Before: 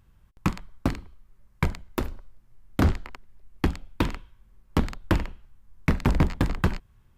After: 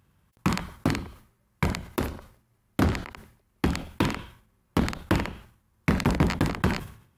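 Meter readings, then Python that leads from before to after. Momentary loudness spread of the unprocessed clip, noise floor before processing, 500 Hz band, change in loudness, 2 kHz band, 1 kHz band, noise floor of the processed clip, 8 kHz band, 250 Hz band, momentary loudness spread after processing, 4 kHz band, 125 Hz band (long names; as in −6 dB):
13 LU, −60 dBFS, +1.5 dB, 0.0 dB, +2.5 dB, +2.0 dB, −69 dBFS, +5.0 dB, +1.5 dB, 11 LU, +3.5 dB, −1.0 dB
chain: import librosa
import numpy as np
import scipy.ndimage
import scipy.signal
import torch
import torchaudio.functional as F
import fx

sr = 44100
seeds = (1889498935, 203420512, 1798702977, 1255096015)

y = scipy.signal.sosfilt(scipy.signal.butter(2, 97.0, 'highpass', fs=sr, output='sos'), x)
y = fx.peak_eq(y, sr, hz=11000.0, db=5.0, octaves=0.29)
y = fx.sustainer(y, sr, db_per_s=100.0)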